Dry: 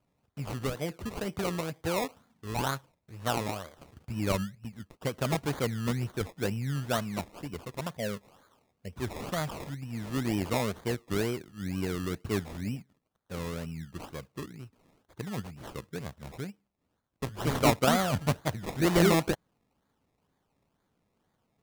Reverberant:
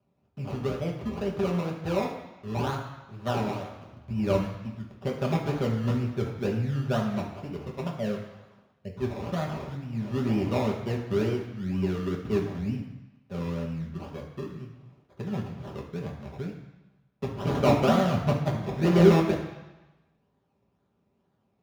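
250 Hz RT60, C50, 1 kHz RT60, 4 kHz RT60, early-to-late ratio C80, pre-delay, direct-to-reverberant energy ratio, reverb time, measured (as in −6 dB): 1.0 s, 6.0 dB, 1.1 s, 1.1 s, 8.5 dB, 3 ms, −2.0 dB, 1.1 s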